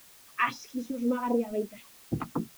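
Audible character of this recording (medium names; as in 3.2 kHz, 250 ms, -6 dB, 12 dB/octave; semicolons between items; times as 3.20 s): phasing stages 2, 3.9 Hz, lowest notch 360–2100 Hz; a quantiser's noise floor 10-bit, dither triangular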